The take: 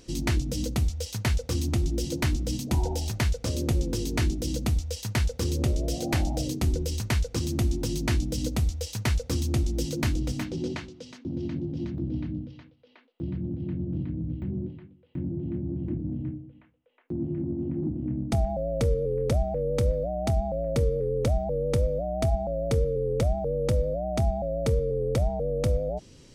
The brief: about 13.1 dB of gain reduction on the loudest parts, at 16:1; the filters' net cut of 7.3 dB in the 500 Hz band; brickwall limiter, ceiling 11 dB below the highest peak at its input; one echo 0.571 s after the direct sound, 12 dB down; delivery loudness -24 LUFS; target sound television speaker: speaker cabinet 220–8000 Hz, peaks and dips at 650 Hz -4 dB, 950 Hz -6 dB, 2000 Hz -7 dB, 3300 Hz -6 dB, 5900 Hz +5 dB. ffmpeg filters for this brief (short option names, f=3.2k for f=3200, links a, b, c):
-af "equalizer=f=500:t=o:g=-7,acompressor=threshold=-34dB:ratio=16,alimiter=level_in=9dB:limit=-24dB:level=0:latency=1,volume=-9dB,highpass=f=220:w=0.5412,highpass=f=220:w=1.3066,equalizer=f=650:t=q:w=4:g=-4,equalizer=f=950:t=q:w=4:g=-6,equalizer=f=2k:t=q:w=4:g=-7,equalizer=f=3.3k:t=q:w=4:g=-6,equalizer=f=5.9k:t=q:w=4:g=5,lowpass=f=8k:w=0.5412,lowpass=f=8k:w=1.3066,aecho=1:1:571:0.251,volume=22.5dB"